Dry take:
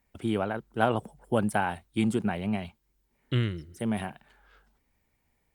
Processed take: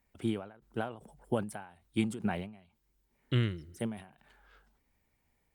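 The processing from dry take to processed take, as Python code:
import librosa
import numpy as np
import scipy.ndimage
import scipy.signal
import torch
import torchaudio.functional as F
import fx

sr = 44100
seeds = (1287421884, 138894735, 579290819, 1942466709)

y = fx.end_taper(x, sr, db_per_s=110.0)
y = F.gain(torch.from_numpy(y), -2.0).numpy()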